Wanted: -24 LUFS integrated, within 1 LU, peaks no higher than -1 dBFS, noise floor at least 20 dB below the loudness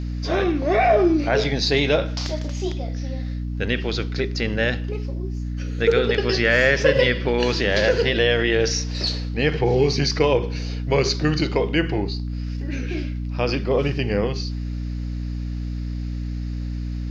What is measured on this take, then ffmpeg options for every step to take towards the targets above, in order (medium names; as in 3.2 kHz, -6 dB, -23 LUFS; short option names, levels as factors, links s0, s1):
hum 60 Hz; highest harmonic 300 Hz; hum level -25 dBFS; loudness -22.0 LUFS; peak level -4.5 dBFS; loudness target -24.0 LUFS
-> -af "bandreject=f=60:t=h:w=6,bandreject=f=120:t=h:w=6,bandreject=f=180:t=h:w=6,bandreject=f=240:t=h:w=6,bandreject=f=300:t=h:w=6"
-af "volume=0.794"